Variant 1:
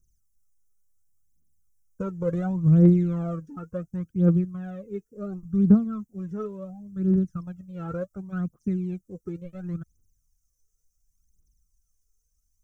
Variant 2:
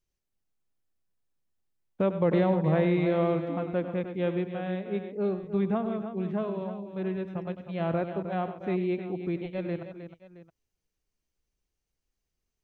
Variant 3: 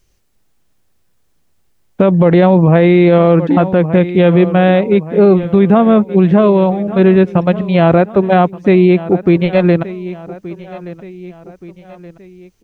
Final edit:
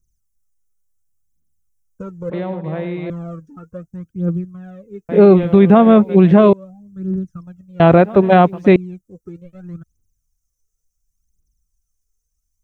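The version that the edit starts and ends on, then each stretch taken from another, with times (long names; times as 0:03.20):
1
0:02.30–0:03.10: punch in from 2
0:05.09–0:06.53: punch in from 3
0:07.80–0:08.76: punch in from 3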